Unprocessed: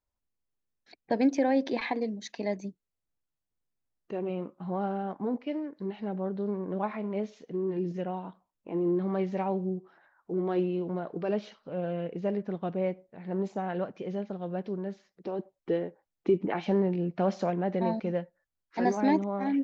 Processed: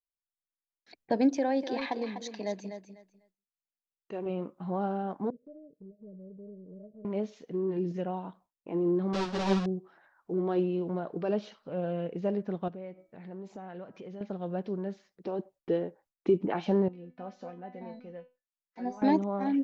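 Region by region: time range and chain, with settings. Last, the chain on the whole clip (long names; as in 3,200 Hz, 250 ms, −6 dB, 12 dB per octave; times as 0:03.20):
0:01.37–0:04.26: low-shelf EQ 480 Hz −5.5 dB + repeating echo 248 ms, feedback 20%, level −9 dB
0:05.30–0:07.05: mu-law and A-law mismatch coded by A + Chebyshev low-pass with heavy ripple 630 Hz, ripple 9 dB + downward compressor 2 to 1, threshold −52 dBFS
0:09.13–0:09.66: each half-wave held at its own peak + low-pass filter 5,600 Hz 24 dB per octave + string-ensemble chorus
0:12.68–0:14.21: hum removal 323.9 Hz, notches 7 + downward compressor 2.5 to 1, threshold −44 dBFS
0:16.88–0:19.02: high-shelf EQ 4,800 Hz −6.5 dB + tuned comb filter 250 Hz, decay 0.29 s, mix 90%
whole clip: noise gate with hold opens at −59 dBFS; dynamic equaliser 2,100 Hz, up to −6 dB, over −55 dBFS, Q 2.8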